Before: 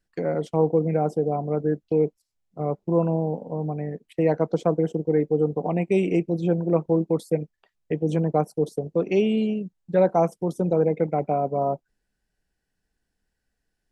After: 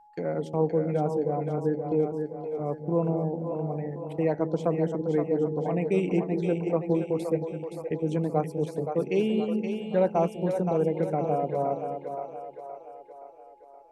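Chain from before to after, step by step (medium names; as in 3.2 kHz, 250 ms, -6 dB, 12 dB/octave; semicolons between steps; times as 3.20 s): whistle 840 Hz -49 dBFS; two-band feedback delay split 410 Hz, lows 203 ms, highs 521 ms, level -6 dB; trim -4.5 dB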